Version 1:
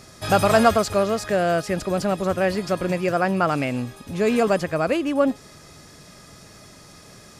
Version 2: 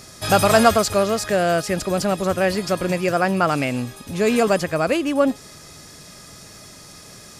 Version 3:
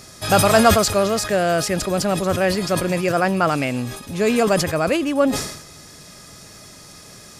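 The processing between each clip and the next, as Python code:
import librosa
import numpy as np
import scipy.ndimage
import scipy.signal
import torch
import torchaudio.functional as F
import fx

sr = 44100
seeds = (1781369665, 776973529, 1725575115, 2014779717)

y1 = fx.high_shelf(x, sr, hz=3600.0, db=6.5)
y1 = F.gain(torch.from_numpy(y1), 1.5).numpy()
y2 = fx.sustainer(y1, sr, db_per_s=70.0)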